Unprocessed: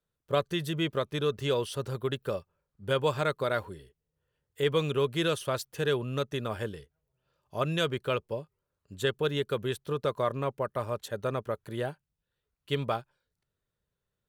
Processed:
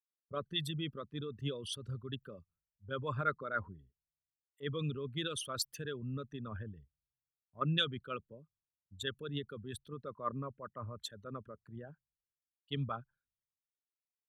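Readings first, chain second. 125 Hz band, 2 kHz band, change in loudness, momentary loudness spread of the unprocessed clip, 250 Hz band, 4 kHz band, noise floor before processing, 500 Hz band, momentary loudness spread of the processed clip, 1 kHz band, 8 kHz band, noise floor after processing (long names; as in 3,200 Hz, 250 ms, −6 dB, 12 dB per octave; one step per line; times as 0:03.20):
−6.5 dB, −7.5 dB, −8.5 dB, 8 LU, −8.0 dB, −4.0 dB, below −85 dBFS, −14.5 dB, 15 LU, −7.5 dB, −2.5 dB, below −85 dBFS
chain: spectral envelope exaggerated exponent 2
flat-topped bell 540 Hz −12.5 dB
multiband upward and downward expander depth 100%
level −3.5 dB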